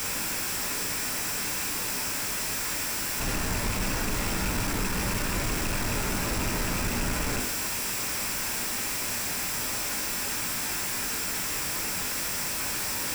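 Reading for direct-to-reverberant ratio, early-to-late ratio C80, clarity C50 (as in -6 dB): 2.0 dB, 13.0 dB, 9.5 dB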